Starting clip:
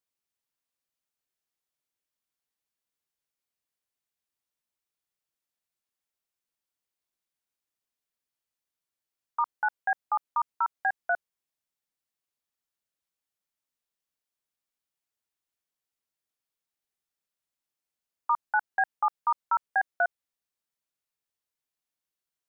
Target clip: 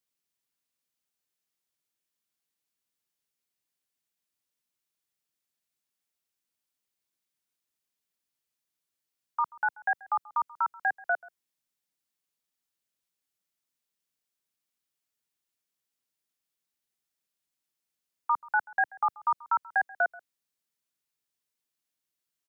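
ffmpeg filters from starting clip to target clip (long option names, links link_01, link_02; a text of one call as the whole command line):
ffmpeg -i in.wav -filter_complex "[0:a]tiltshelf=frequency=1400:gain=-3.5,acrossover=split=110|390|580[link_01][link_02][link_03][link_04];[link_02]acontrast=78[link_05];[link_01][link_05][link_03][link_04]amix=inputs=4:normalize=0,asplit=2[link_06][link_07];[link_07]adelay=134.1,volume=-22dB,highshelf=frequency=4000:gain=-3.02[link_08];[link_06][link_08]amix=inputs=2:normalize=0" out.wav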